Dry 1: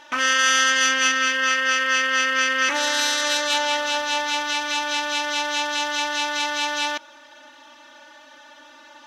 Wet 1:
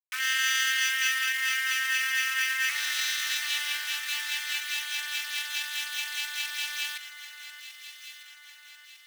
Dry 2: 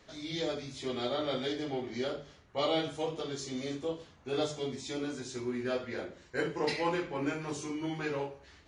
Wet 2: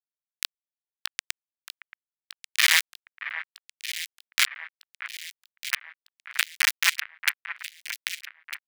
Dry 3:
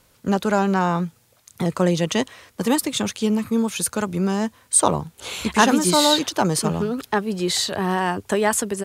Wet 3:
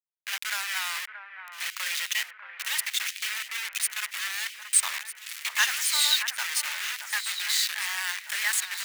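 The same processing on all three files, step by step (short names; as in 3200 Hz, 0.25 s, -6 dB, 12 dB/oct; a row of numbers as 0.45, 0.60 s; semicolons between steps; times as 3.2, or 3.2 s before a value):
bit-crush 4-bit; ladder high-pass 1600 Hz, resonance 40%; echo with dull and thin repeats by turns 0.626 s, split 2100 Hz, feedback 69%, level -9 dB; match loudness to -27 LUFS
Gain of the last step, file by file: -1.5, +20.0, +3.5 dB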